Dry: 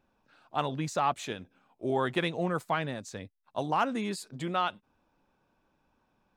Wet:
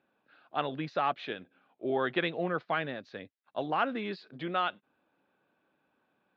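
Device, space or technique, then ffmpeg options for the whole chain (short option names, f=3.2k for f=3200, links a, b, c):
kitchen radio: -af "lowpass=f=4.9k:w=0.5412,lowpass=f=4.9k:w=1.3066,highpass=200,equalizer=f=220:t=q:w=4:g=-3,equalizer=f=950:t=q:w=4:g=-6,equalizer=f=1.6k:t=q:w=4:g=3,lowpass=f=4.1k:w=0.5412,lowpass=f=4.1k:w=1.3066"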